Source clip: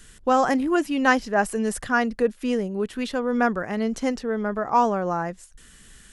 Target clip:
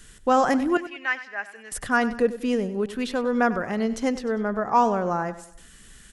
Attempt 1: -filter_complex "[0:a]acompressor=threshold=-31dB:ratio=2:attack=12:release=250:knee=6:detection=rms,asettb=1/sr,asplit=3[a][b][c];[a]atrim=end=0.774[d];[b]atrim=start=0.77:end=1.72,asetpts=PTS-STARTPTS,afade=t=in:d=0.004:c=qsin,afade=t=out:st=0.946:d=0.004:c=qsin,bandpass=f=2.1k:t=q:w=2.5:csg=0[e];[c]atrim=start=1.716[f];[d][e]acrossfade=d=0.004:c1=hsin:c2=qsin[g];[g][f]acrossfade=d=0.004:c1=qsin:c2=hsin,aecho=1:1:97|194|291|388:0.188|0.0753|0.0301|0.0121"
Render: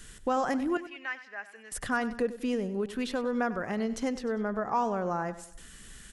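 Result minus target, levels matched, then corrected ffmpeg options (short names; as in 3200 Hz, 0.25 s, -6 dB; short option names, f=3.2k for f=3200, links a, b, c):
compressor: peak gain reduction +10.5 dB
-filter_complex "[0:a]asettb=1/sr,asplit=3[a][b][c];[a]atrim=end=0.774[d];[b]atrim=start=0.77:end=1.72,asetpts=PTS-STARTPTS,afade=t=in:d=0.004:c=qsin,afade=t=out:st=0.946:d=0.004:c=qsin,bandpass=f=2.1k:t=q:w=2.5:csg=0[e];[c]atrim=start=1.716[f];[d][e]acrossfade=d=0.004:c1=hsin:c2=qsin[g];[g][f]acrossfade=d=0.004:c1=qsin:c2=hsin,aecho=1:1:97|194|291|388:0.188|0.0753|0.0301|0.0121"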